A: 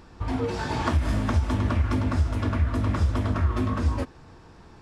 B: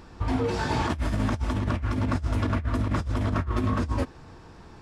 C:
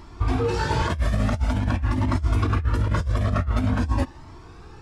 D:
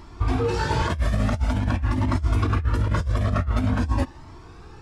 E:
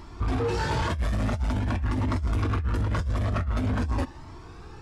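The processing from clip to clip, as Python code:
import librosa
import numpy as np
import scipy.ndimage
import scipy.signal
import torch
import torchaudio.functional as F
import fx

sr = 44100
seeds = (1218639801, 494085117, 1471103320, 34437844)

y1 = fx.over_compress(x, sr, threshold_db=-25.0, ratio=-0.5)
y2 = fx.comb_cascade(y1, sr, direction='rising', hz=0.47)
y2 = y2 * librosa.db_to_amplitude(7.0)
y3 = y2
y4 = 10.0 ** (-21.0 / 20.0) * np.tanh(y3 / 10.0 ** (-21.0 / 20.0))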